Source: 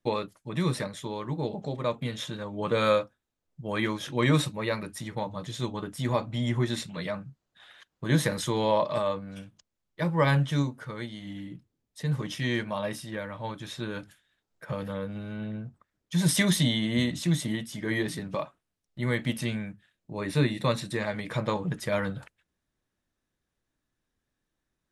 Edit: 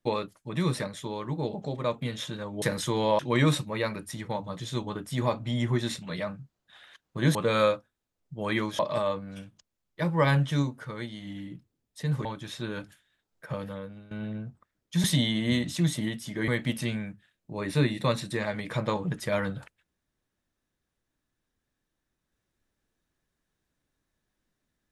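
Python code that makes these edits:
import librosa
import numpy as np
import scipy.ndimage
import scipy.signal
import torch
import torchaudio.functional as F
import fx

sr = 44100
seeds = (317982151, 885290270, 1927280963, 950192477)

y = fx.edit(x, sr, fx.swap(start_s=2.62, length_s=1.44, other_s=8.22, other_length_s=0.57),
    fx.cut(start_s=12.25, length_s=1.19),
    fx.fade_out_to(start_s=14.67, length_s=0.63, floor_db=-16.5),
    fx.cut(start_s=16.23, length_s=0.28),
    fx.cut(start_s=17.95, length_s=1.13), tone=tone)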